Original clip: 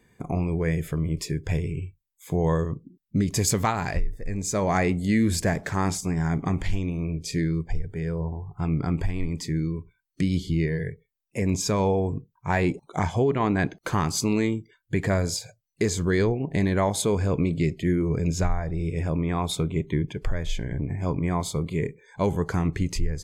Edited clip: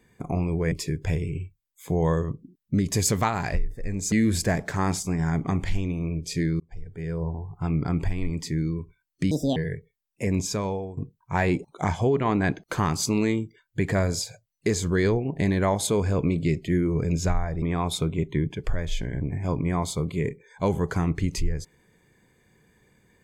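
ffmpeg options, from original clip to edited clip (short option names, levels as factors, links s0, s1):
-filter_complex "[0:a]asplit=8[s0][s1][s2][s3][s4][s5][s6][s7];[s0]atrim=end=0.722[s8];[s1]atrim=start=1.138:end=4.542[s9];[s2]atrim=start=5.098:end=7.58,asetpts=PTS-STARTPTS,afade=t=out:st=2.478:d=0.004:c=hsin[s10];[s3]atrim=start=7.58:end=10.294,asetpts=PTS-STARTPTS,afade=t=in:d=0.61[s11];[s4]atrim=start=10.29:end=10.71,asetpts=PTS-STARTPTS,asetrate=73647,aresample=44100,atrim=end_sample=11091,asetpts=PTS-STARTPTS[s12];[s5]atrim=start=10.706:end=12.12,asetpts=PTS-STARTPTS,afade=t=out:st=0.744:d=0.67:silence=0.158489[s13];[s6]atrim=start=12.12:end=18.772,asetpts=PTS-STARTPTS,afade=t=in:d=0.004:c=hsin:silence=0.158489[s14];[s7]atrim=start=19.198[s15];[s8][s9]acrossfade=d=0.004:c1=hsin:c2=hsin[s16];[s10][s11]concat=n=2:v=0:a=1[s17];[s16][s17]acrossfade=d=0.004:c1=hsin:c2=hsin[s18];[s18][s12]acrossfade=d=0.004:c1=hsin:c2=hsin[s19];[s13][s14]concat=n=2:v=0:a=1[s20];[s19][s20]acrossfade=d=0.004:c1=hsin:c2=hsin[s21];[s21][s15]acrossfade=d=0.004:c1=hsin:c2=hsin"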